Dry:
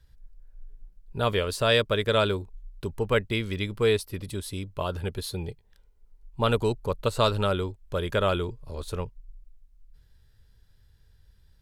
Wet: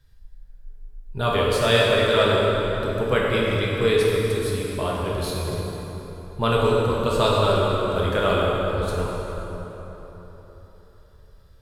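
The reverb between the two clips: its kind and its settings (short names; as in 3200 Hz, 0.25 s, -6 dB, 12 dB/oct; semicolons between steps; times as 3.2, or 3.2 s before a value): plate-style reverb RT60 4 s, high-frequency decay 0.6×, DRR -5 dB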